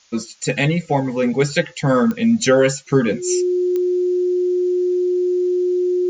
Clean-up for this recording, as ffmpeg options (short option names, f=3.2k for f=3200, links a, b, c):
-af "adeclick=t=4,bandreject=f=360:w=30,agate=range=-21dB:threshold=-27dB"